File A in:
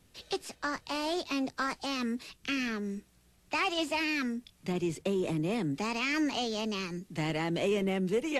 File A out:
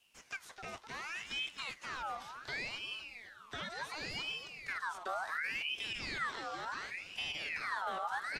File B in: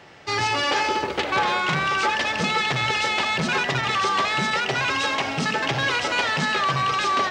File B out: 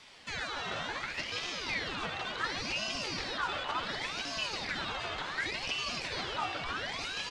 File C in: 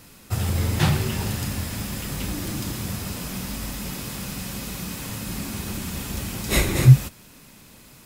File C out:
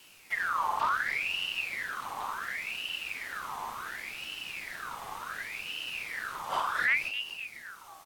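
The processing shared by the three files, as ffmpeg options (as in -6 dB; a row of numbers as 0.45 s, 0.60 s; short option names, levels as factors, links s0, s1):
-filter_complex "[0:a]acrossover=split=2600[s0][s1];[s1]acompressor=threshold=0.00562:ratio=4:attack=1:release=60[s2];[s0][s2]amix=inputs=2:normalize=0,equalizer=f=7200:w=5.6:g=3.5,acrossover=split=440|1900[s3][s4][s5];[s4]acompressor=threshold=0.00794:ratio=6[s6];[s3][s6][s5]amix=inputs=3:normalize=0,flanger=delay=6.4:depth=5:regen=-81:speed=1.1:shape=sinusoidal,volume=11.9,asoftclip=hard,volume=0.0841,asplit=2[s7][s8];[s8]asplit=6[s9][s10][s11][s12][s13][s14];[s9]adelay=255,afreqshift=-75,volume=0.355[s15];[s10]adelay=510,afreqshift=-150,volume=0.191[s16];[s11]adelay=765,afreqshift=-225,volume=0.104[s17];[s12]adelay=1020,afreqshift=-300,volume=0.0556[s18];[s13]adelay=1275,afreqshift=-375,volume=0.0302[s19];[s14]adelay=1530,afreqshift=-450,volume=0.0162[s20];[s15][s16][s17][s18][s19][s20]amix=inputs=6:normalize=0[s21];[s7][s21]amix=inputs=2:normalize=0,aeval=exprs='val(0)*sin(2*PI*1900*n/s+1900*0.5/0.69*sin(2*PI*0.69*n/s))':c=same"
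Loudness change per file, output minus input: -7.0 LU, -13.0 LU, -8.0 LU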